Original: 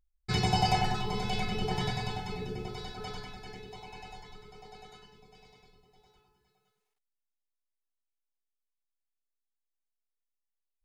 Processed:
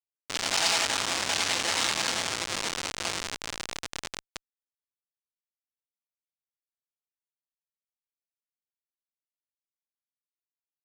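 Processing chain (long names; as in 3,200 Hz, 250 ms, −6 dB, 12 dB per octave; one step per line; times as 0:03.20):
low-pass that shuts in the quiet parts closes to 680 Hz, open at −28.5 dBFS
automatic gain control gain up to 15 dB
ring modulation 88 Hz
comparator with hysteresis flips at −27 dBFS
meter weighting curve ITU-R 468
leveller curve on the samples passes 1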